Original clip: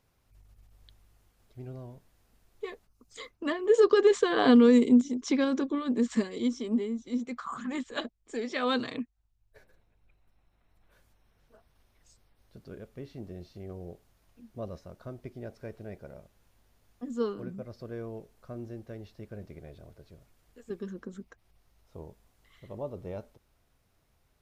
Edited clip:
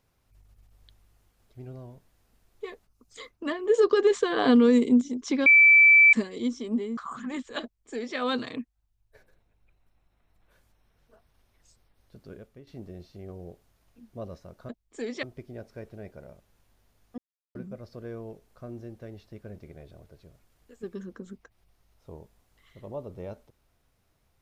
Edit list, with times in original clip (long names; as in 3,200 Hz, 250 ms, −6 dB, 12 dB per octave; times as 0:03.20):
0:05.46–0:06.13: beep over 2,320 Hz −12 dBFS
0:06.97–0:07.38: remove
0:08.04–0:08.58: duplicate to 0:15.10
0:12.76–0:13.08: fade out, to −11.5 dB
0:17.05–0:17.42: silence